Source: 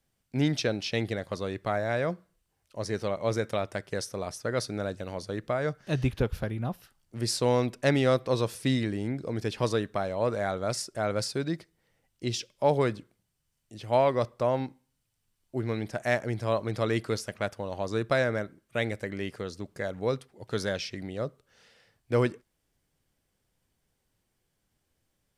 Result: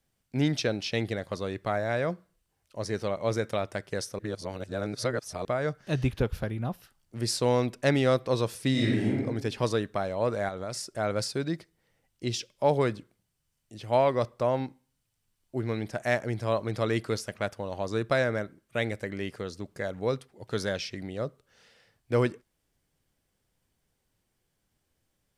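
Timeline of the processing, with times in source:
4.19–5.45 s: reverse
8.71–9.17 s: reverb throw, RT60 0.85 s, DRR -3.5 dB
10.48–10.88 s: compression, threshold -31 dBFS

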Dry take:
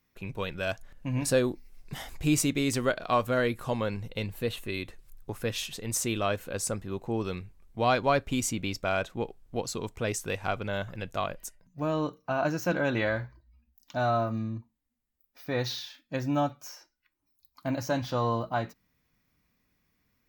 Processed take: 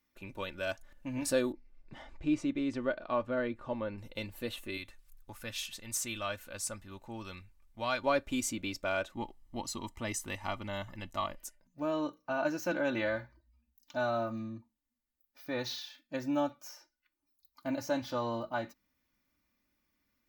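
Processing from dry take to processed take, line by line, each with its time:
1.52–3.98 s: tape spacing loss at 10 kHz 28 dB
4.77–8.04 s: peaking EQ 370 Hz -10.5 dB 1.6 oct
9.12–11.39 s: comb 1 ms, depth 60%
whole clip: bass shelf 140 Hz -5.5 dB; comb 3.4 ms, depth 57%; trim -5.5 dB

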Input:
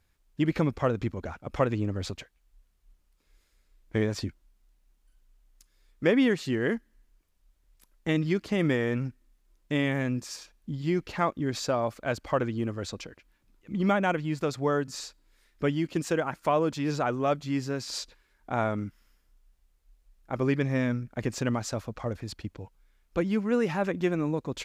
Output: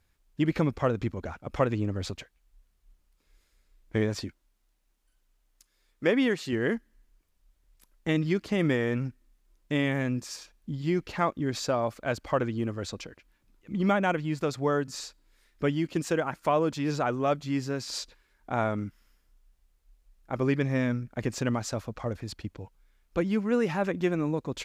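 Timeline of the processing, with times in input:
4.21–6.53 s: bass shelf 160 Hz -9 dB

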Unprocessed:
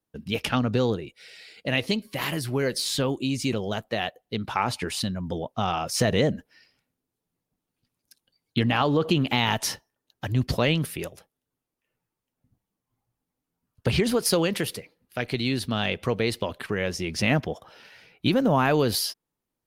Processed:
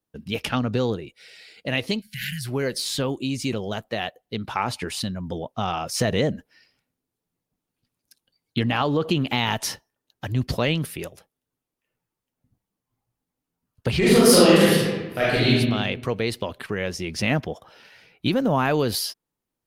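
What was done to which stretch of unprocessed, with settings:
2.01–2.45 s: spectral selection erased 220–1400 Hz
13.98–15.48 s: reverb throw, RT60 1.3 s, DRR -9.5 dB

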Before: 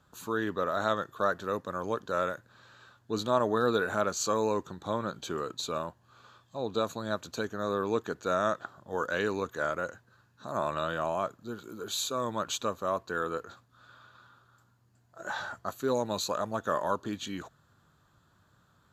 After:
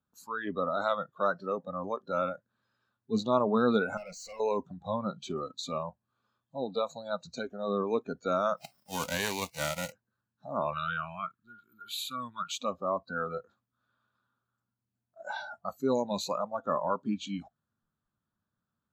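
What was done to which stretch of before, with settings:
3.97–4.40 s: valve stage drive 39 dB, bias 0.3
8.56–9.91 s: formants flattened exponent 0.3
10.73–12.51 s: FFT filter 120 Hz 0 dB, 210 Hz -6 dB, 370 Hz -7 dB, 560 Hz -18 dB, 860 Hz -10 dB, 1.4 kHz +5 dB, 4.1 kHz 0 dB, 6.3 kHz -9 dB, 9.7 kHz +5 dB
whole clip: treble shelf 5.4 kHz -7.5 dB; spectral noise reduction 22 dB; peaking EQ 220 Hz +10 dB 0.47 oct

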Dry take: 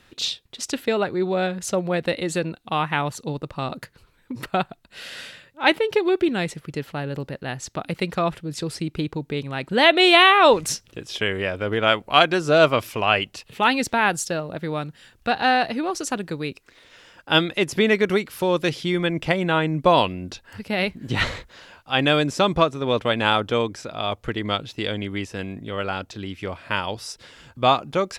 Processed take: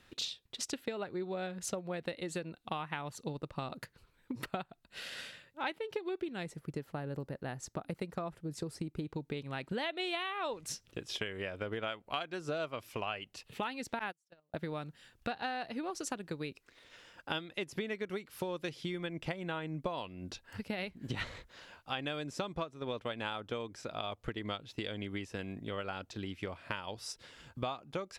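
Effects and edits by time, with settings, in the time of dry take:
6.43–9.07 s: peaking EQ 3.1 kHz -8.5 dB 1.6 oct
13.99–14.54 s: gate -21 dBFS, range -39 dB
whole clip: transient shaper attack +4 dB, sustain -2 dB; compression 6:1, threshold -27 dBFS; trim -8 dB

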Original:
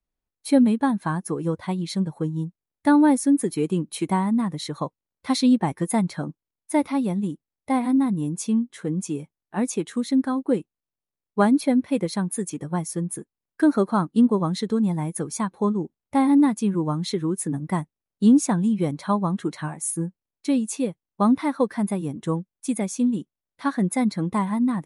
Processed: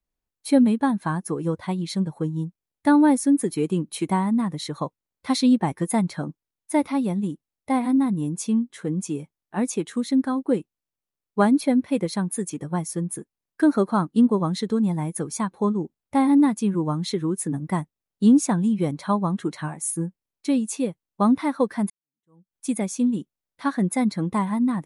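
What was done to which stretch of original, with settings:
21.90–22.55 s: fade in exponential

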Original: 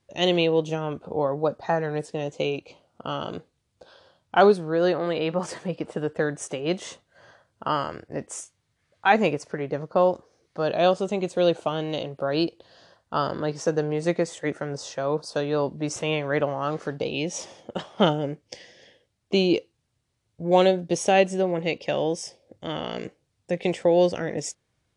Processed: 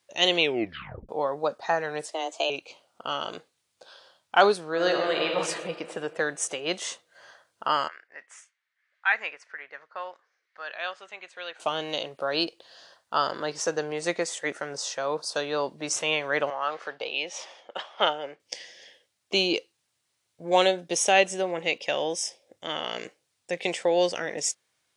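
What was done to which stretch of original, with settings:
0.40 s: tape stop 0.69 s
2.08–2.50 s: frequency shift +160 Hz
4.69–5.32 s: reverb throw, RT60 2.3 s, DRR 1 dB
7.88–11.60 s: band-pass filter 1.8 kHz, Q 2.5
16.50–18.40 s: three-band isolator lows -14 dB, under 430 Hz, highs -17 dB, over 4.2 kHz
20.49–23.03 s: band-stop 4.5 kHz
whole clip: high-pass 1.2 kHz 6 dB/octave; treble shelf 8.2 kHz +4.5 dB; trim +4.5 dB

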